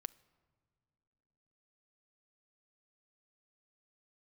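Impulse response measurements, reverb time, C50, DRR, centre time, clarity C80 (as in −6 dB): non-exponential decay, 22.0 dB, 17.0 dB, 2 ms, 24.0 dB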